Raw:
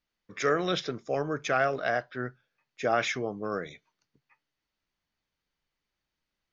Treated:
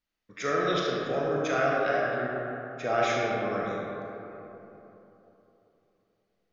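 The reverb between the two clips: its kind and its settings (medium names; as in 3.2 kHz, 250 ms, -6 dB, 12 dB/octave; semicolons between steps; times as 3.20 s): algorithmic reverb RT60 3.4 s, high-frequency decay 0.4×, pre-delay 0 ms, DRR -4 dB; trim -4 dB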